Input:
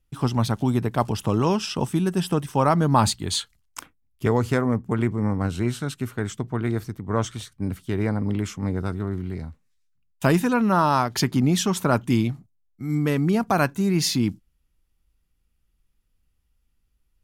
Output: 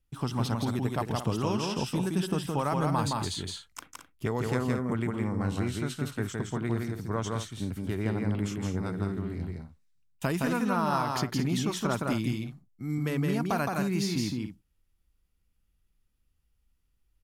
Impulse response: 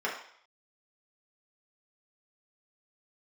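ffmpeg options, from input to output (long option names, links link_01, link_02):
-filter_complex "[0:a]acrossover=split=1500|6400[link_01][link_02][link_03];[link_01]acompressor=threshold=-22dB:ratio=4[link_04];[link_02]acompressor=threshold=-32dB:ratio=4[link_05];[link_03]acompressor=threshold=-41dB:ratio=4[link_06];[link_04][link_05][link_06]amix=inputs=3:normalize=0,aecho=1:1:166.2|221.6:0.708|0.282,volume=-5dB"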